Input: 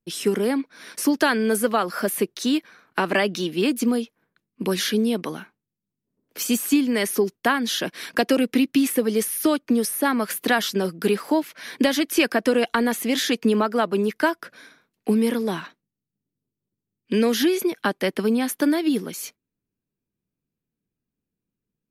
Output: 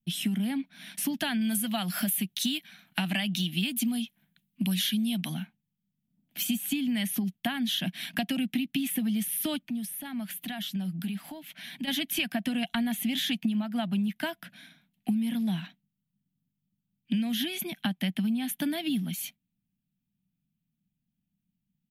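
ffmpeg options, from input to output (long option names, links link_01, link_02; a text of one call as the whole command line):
ffmpeg -i in.wav -filter_complex "[0:a]asettb=1/sr,asplit=3[link_01][link_02][link_03];[link_01]atrim=end=1.414[link_04];[link_02]atrim=start=1.41:end=5.34,asetpts=PTS-STARTPTS,afade=type=in:duration=0.004:curve=qsin,afade=type=out:start_time=3.926:duration=0.004:curve=qsin,highshelf=frequency=2600:gain=10[link_05];[link_03]atrim=start=5.336[link_06];[link_04][link_05]acrossfade=duration=0.004:curve1=hsin:curve2=qsin[link_07];[link_07][link_06]acrossfade=duration=0.004:curve1=qsin:curve2=hsin,asplit=3[link_08][link_09][link_10];[link_08]afade=type=out:start_time=9.62:duration=0.02[link_11];[link_09]acompressor=threshold=-36dB:ratio=2.5:attack=3.2:release=140:knee=1:detection=peak,afade=type=in:start_time=9.62:duration=0.02,afade=type=out:start_time=11.87:duration=0.02[link_12];[link_10]afade=type=in:start_time=11.87:duration=0.02[link_13];[link_11][link_12][link_13]amix=inputs=3:normalize=0,firequalizer=gain_entry='entry(110,0);entry(180,10);entry(430,-28);entry(700,-3);entry(1100,-16);entry(1700,-6);entry(3200,4);entry(4800,-10);entry(8700,-5);entry(13000,1)':delay=0.05:min_phase=1,acompressor=threshold=-26dB:ratio=6" out.wav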